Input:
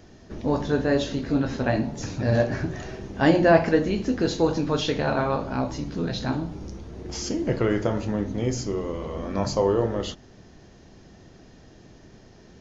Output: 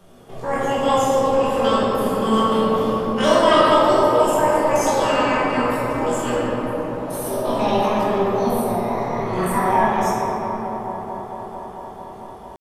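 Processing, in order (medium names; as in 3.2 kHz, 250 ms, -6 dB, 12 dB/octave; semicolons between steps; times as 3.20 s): dynamic bell 4.1 kHz, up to +3 dB, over -45 dBFS, Q 1.5; pitch shift +11 st; feedback echo behind a band-pass 223 ms, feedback 85%, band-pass 640 Hz, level -11 dB; simulated room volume 200 m³, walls hard, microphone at 1.2 m; trim -4.5 dB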